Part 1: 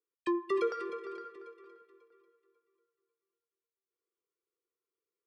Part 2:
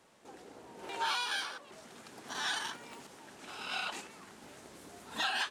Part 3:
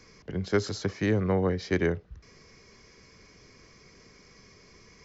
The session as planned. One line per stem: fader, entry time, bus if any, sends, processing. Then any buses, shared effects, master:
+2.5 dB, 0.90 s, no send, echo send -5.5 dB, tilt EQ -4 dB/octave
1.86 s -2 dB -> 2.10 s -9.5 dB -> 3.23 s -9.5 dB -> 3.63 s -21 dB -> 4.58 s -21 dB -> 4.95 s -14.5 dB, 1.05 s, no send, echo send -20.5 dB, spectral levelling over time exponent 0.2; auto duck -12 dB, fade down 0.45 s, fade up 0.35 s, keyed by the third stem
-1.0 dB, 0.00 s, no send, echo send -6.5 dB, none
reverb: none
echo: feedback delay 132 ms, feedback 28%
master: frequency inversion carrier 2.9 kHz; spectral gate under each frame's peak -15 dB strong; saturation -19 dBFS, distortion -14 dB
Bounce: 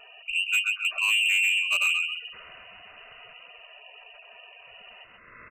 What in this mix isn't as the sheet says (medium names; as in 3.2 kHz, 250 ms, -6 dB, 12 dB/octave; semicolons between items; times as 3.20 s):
stem 1: muted; stem 3 -1.0 dB -> +6.0 dB